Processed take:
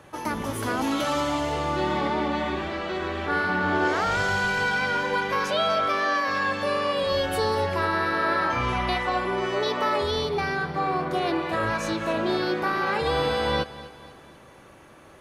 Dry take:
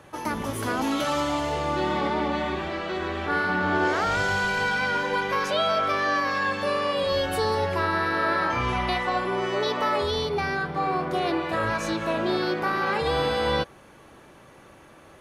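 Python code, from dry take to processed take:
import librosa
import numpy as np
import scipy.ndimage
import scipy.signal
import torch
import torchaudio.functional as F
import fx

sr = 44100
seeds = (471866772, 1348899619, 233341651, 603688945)

p1 = fx.highpass(x, sr, hz=fx.line((5.86, 130.0), (6.27, 280.0)), slope=12, at=(5.86, 6.27), fade=0.02)
y = p1 + fx.echo_feedback(p1, sr, ms=246, feedback_pct=48, wet_db=-16.5, dry=0)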